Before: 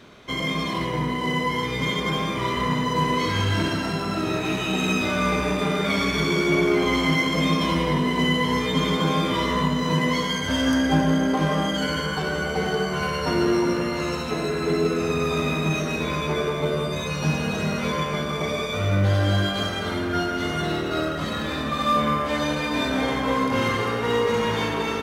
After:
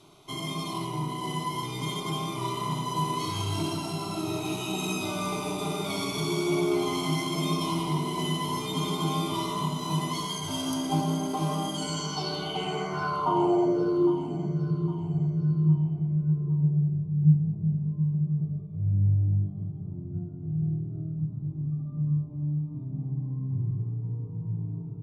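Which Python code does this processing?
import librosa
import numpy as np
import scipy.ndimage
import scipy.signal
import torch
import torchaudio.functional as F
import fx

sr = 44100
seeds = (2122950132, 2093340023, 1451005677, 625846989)

y = fx.fixed_phaser(x, sr, hz=340.0, stages=8)
y = fx.filter_sweep_lowpass(y, sr, from_hz=11000.0, to_hz=140.0, start_s=11.7, end_s=14.68, q=4.5)
y = fx.echo_feedback(y, sr, ms=809, feedback_pct=42, wet_db=-14.0)
y = F.gain(torch.from_numpy(y), -4.0).numpy()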